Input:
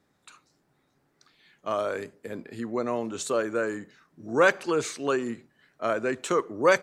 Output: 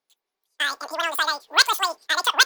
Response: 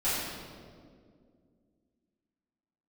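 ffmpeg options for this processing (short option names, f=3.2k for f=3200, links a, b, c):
-af "asetrate=122598,aresample=44100,highshelf=f=2.1k:g=5.5,agate=range=-20dB:threshold=-46dB:ratio=16:detection=peak,volume=2.5dB"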